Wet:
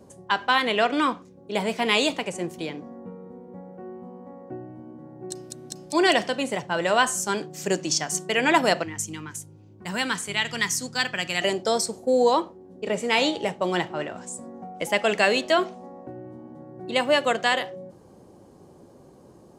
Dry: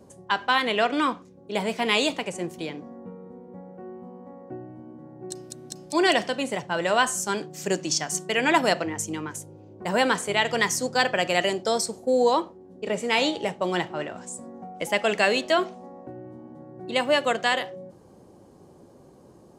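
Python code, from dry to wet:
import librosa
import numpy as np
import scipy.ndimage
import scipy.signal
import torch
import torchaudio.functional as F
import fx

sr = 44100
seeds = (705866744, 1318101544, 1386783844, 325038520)

y = fx.peak_eq(x, sr, hz=560.0, db=-13.5, octaves=1.7, at=(8.83, 11.42))
y = F.gain(torch.from_numpy(y), 1.0).numpy()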